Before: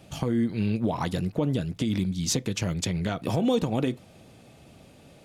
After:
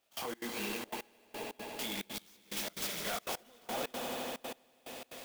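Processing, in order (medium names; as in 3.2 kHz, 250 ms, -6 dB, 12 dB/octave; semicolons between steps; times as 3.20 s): high-pass 640 Hz 12 dB/octave; treble shelf 4.4 kHz +9.5 dB; compression 4:1, threshold -36 dBFS, peak gain reduction 16 dB; 0.93–1.73 s: pitch-class resonator G#, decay 0.11 s; chorus voices 6, 1.3 Hz, delay 22 ms, depth 3.1 ms; hard clipper -40 dBFS, distortion -9 dB; on a send: echo with a slow build-up 80 ms, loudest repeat 5, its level -9 dB; on the sum: trance gate "..xx.xxxxx.x.." 179 bpm -24 dB; sampling jitter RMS 0.032 ms; trim +6 dB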